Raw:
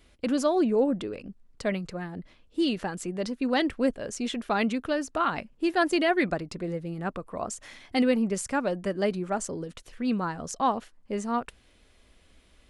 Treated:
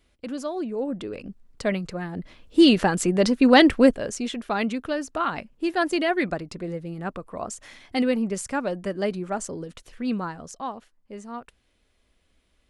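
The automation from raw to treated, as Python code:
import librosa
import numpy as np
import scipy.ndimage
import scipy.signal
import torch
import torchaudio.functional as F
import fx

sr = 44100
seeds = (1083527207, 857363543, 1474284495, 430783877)

y = fx.gain(x, sr, db=fx.line((0.76, -6.0), (1.2, 3.5), (2.02, 3.5), (2.6, 11.0), (3.76, 11.0), (4.31, 0.5), (10.17, 0.5), (10.7, -8.0)))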